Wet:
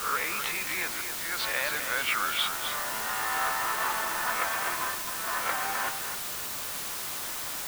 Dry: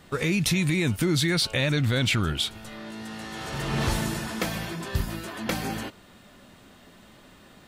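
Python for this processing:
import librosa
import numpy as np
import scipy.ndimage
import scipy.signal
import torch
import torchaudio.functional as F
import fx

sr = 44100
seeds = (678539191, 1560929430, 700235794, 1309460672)

p1 = fx.spec_swells(x, sr, rise_s=0.35)
p2 = scipy.signal.sosfilt(scipy.signal.butter(2, 1600.0, 'lowpass', fs=sr, output='sos'), p1)
p3 = fx.over_compress(p2, sr, threshold_db=-36.0, ratio=-1.0)
p4 = p2 + (p3 * 10.0 ** (-0.5 / 20.0))
p5 = fx.auto_swell(p4, sr, attack_ms=535.0)
p6 = fx.highpass_res(p5, sr, hz=1100.0, q=1.5)
p7 = fx.quant_dither(p6, sr, seeds[0], bits=6, dither='triangular')
y = p7 + fx.echo_single(p7, sr, ms=257, db=-8.0, dry=0)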